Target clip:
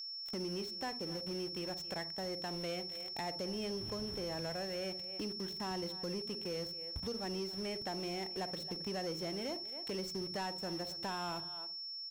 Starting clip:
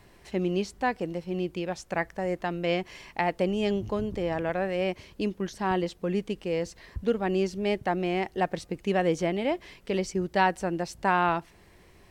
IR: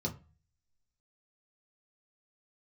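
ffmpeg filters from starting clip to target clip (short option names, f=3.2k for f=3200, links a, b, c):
-filter_complex "[0:a]aeval=exprs='val(0)*gte(abs(val(0)),0.0112)':c=same,asplit=2[a][b];[b]adelay=270,highpass=300,lowpass=3.4k,asoftclip=type=hard:threshold=-19.5dB,volume=-20dB[c];[a][c]amix=inputs=2:normalize=0,asplit=2[d][e];[1:a]atrim=start_sample=2205,adelay=46[f];[e][f]afir=irnorm=-1:irlink=0,volume=-19dB[g];[d][g]amix=inputs=2:normalize=0,acompressor=threshold=-45dB:ratio=2.5,aeval=exprs='val(0)+0.00631*sin(2*PI*5400*n/s)':c=same,asoftclip=type=tanh:threshold=-35.5dB,volume=2.5dB"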